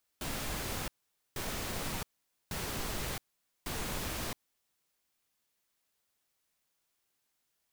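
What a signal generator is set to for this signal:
noise bursts pink, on 0.67 s, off 0.48 s, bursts 4, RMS −37 dBFS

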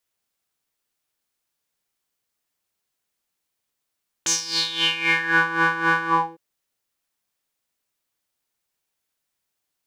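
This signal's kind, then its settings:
subtractive patch with tremolo E4, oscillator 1 triangle, oscillator 2 square, interval 0 semitones, detune 20 cents, oscillator 2 level −6.5 dB, sub −0.5 dB, noise −29.5 dB, filter bandpass, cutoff 590 Hz, Q 7, filter envelope 3.5 octaves, filter decay 1.17 s, filter sustain 35%, attack 3.8 ms, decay 0.11 s, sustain −5.5 dB, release 0.31 s, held 1.80 s, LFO 3.8 Hz, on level 12 dB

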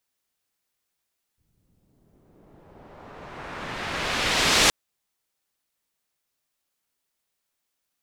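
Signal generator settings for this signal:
filter sweep on noise white, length 3.32 s lowpass, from 130 Hz, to 5,800 Hz, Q 0.8, exponential, gain ramp +39.5 dB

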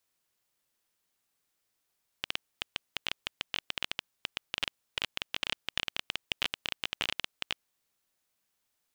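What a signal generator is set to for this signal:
Geiger counter clicks 15 per second −12.5 dBFS 5.42 s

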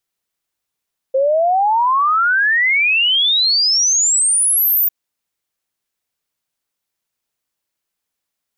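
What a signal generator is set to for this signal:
exponential sine sweep 520 Hz → 15,000 Hz 3.75 s −11.5 dBFS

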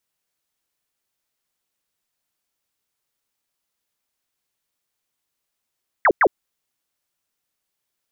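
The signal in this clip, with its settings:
repeated falling chirps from 2,200 Hz, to 310 Hz, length 0.06 s sine, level −11 dB, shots 2, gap 0.10 s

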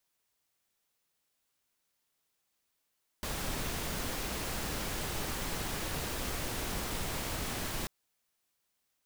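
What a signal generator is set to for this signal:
noise pink, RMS −36 dBFS 4.64 s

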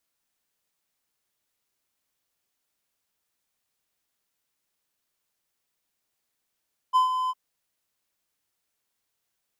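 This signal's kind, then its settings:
note with an ADSR envelope triangle 1,020 Hz, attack 29 ms, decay 125 ms, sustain −8.5 dB, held 0.37 s, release 36 ms −13.5 dBFS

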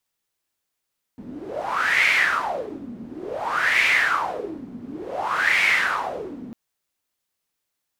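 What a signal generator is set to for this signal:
wind from filtered noise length 5.35 s, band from 230 Hz, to 2,200 Hz, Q 7.2, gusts 3, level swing 18.5 dB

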